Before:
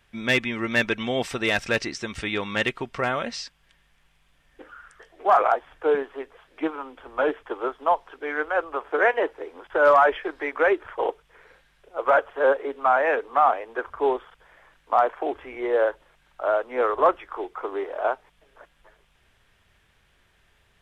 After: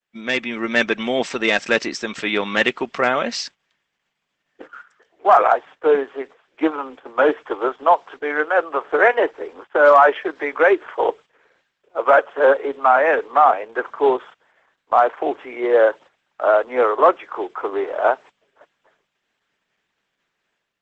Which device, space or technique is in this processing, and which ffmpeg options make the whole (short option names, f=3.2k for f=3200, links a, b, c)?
video call: -af "agate=range=-33dB:threshold=-57dB:ratio=3:detection=peak,highpass=f=180:w=0.5412,highpass=f=180:w=1.3066,dynaudnorm=f=360:g=3:m=8.5dB,agate=range=-11dB:threshold=-37dB:ratio=16:detection=peak" -ar 48000 -c:a libopus -b:a 12k